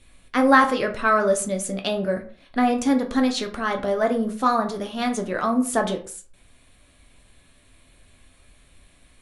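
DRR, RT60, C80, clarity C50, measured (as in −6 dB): 3.5 dB, 0.45 s, 16.0 dB, 12.0 dB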